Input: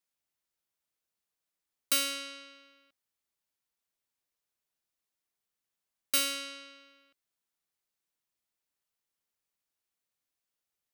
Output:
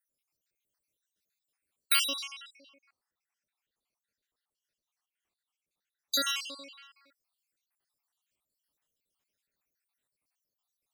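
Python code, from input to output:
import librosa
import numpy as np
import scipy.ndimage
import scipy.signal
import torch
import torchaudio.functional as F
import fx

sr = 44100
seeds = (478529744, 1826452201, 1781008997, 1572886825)

y = fx.spec_dropout(x, sr, seeds[0], share_pct=69)
y = fx.high_shelf(y, sr, hz=8400.0, db=-10.0, at=(2.56, 6.28), fade=0.02)
y = y * 10.0 ** (7.0 / 20.0)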